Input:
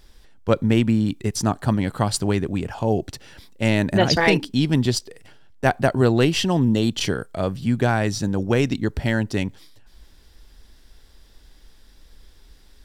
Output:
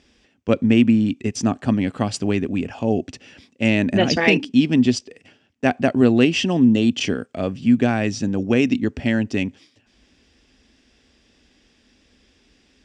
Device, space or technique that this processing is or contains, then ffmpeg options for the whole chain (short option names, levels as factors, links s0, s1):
car door speaker: -af "highpass=100,equalizer=f=140:t=q:w=4:g=-6,equalizer=f=250:t=q:w=4:g=9,equalizer=f=940:t=q:w=4:g=-7,equalizer=f=1400:t=q:w=4:g=-4,equalizer=f=2600:t=q:w=4:g=7,equalizer=f=4100:t=q:w=4:g=-7,lowpass=f=7100:w=0.5412,lowpass=f=7100:w=1.3066"